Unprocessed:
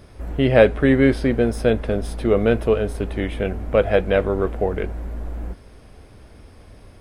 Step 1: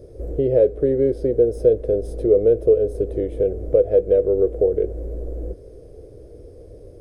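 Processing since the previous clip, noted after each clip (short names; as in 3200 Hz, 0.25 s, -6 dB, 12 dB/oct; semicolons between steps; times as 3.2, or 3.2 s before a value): tilt shelf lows -4.5 dB; compressor 2:1, threshold -31 dBFS, peak gain reduction 12 dB; EQ curve 140 Hz 0 dB, 230 Hz -9 dB, 320 Hz +5 dB, 490 Hz +11 dB, 910 Hz -22 dB, 1800 Hz -25 dB, 2800 Hz -27 dB, 6200 Hz -16 dB; gain +5.5 dB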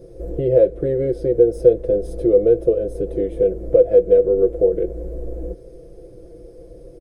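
comb 5.9 ms, depth 92%; gain -1 dB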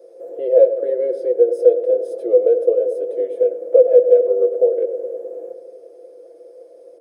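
ladder high-pass 470 Hz, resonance 50%; darkening echo 0.105 s, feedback 81%, low-pass 1300 Hz, level -10.5 dB; gain +5.5 dB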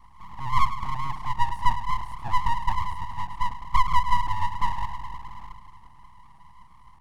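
full-wave rectifier; gain -6 dB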